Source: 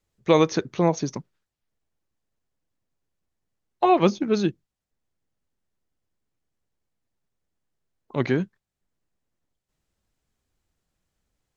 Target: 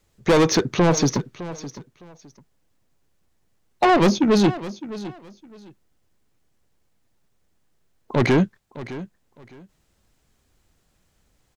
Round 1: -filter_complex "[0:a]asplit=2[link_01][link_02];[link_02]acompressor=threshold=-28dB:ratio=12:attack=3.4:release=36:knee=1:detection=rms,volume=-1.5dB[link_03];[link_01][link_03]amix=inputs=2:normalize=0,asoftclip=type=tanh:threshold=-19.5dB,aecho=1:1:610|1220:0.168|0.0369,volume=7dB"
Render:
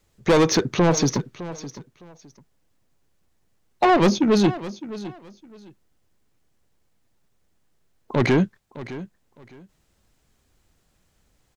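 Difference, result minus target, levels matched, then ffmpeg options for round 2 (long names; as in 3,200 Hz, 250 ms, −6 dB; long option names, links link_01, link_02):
downward compressor: peak gain reduction +8.5 dB
-filter_complex "[0:a]asplit=2[link_01][link_02];[link_02]acompressor=threshold=-18.5dB:ratio=12:attack=3.4:release=36:knee=1:detection=rms,volume=-1.5dB[link_03];[link_01][link_03]amix=inputs=2:normalize=0,asoftclip=type=tanh:threshold=-19.5dB,aecho=1:1:610|1220:0.168|0.0369,volume=7dB"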